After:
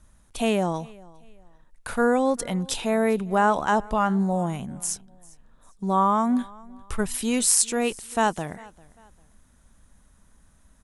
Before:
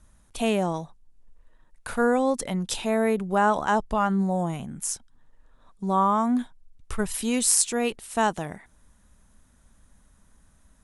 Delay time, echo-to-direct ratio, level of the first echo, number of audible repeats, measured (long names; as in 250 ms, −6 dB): 398 ms, −23.0 dB, −23.5 dB, 2